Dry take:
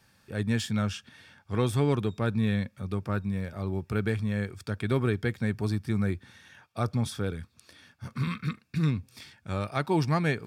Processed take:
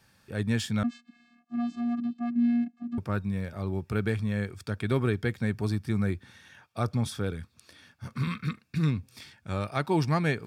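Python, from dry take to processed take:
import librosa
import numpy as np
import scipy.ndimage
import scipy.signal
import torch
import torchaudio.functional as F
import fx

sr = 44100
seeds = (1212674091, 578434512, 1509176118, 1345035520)

y = fx.vocoder(x, sr, bands=8, carrier='square', carrier_hz=238.0, at=(0.83, 2.98))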